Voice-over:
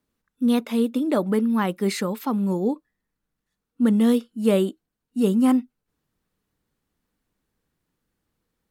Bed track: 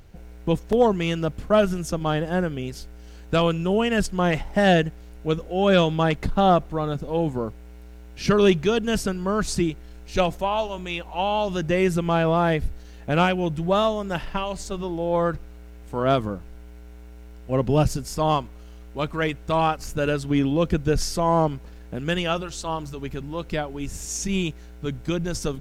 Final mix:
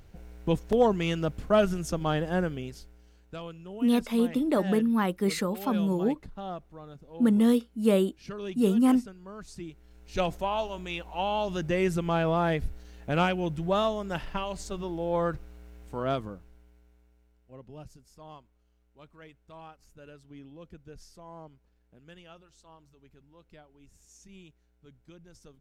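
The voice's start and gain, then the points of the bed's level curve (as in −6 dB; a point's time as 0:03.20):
3.40 s, −3.5 dB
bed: 0:02.47 −4 dB
0:03.38 −20 dB
0:09.52 −20 dB
0:10.28 −5.5 dB
0:15.81 −5.5 dB
0:17.63 −26.5 dB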